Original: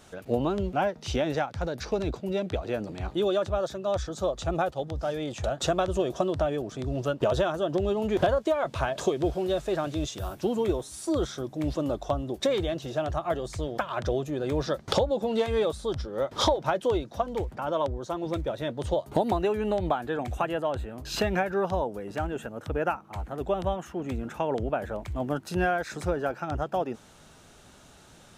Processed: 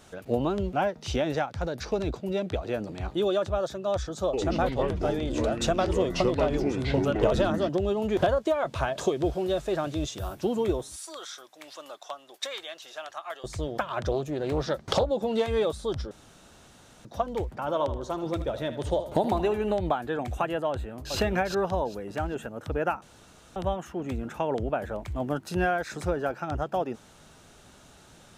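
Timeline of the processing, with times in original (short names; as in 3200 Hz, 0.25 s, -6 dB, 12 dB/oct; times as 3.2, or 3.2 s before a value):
4.25–7.69 echoes that change speed 83 ms, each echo -5 st, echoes 3
10.96–13.44 HPF 1200 Hz
14.11–15.09 Doppler distortion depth 0.35 ms
16.11–17.05 room tone
17.6–19.73 feedback echo 77 ms, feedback 43%, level -12 dB
20.7–21.14 echo throw 0.4 s, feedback 25%, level -3 dB
23.02–23.56 room tone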